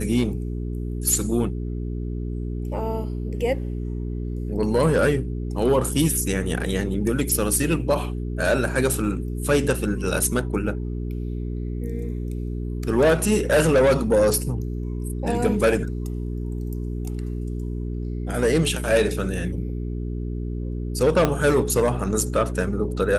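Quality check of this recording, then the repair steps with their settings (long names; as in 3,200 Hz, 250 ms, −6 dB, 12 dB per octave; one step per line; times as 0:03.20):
mains hum 60 Hz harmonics 7 −28 dBFS
0:21.25: click −6 dBFS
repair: click removal
hum removal 60 Hz, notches 7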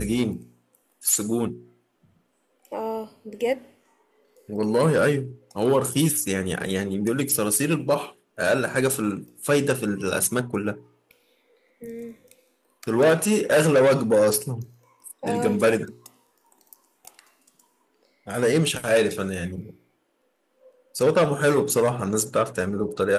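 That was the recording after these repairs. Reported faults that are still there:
0:21.25: click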